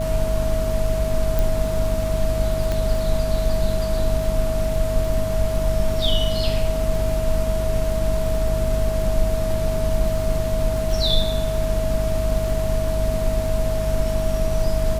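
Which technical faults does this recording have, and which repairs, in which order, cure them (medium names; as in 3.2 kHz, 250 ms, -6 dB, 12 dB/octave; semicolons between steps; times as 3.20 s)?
crackle 45 per s -28 dBFS
hum 50 Hz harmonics 5 -25 dBFS
whine 640 Hz -24 dBFS
1.39 s: pop
2.72 s: pop -11 dBFS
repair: de-click; de-hum 50 Hz, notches 5; band-stop 640 Hz, Q 30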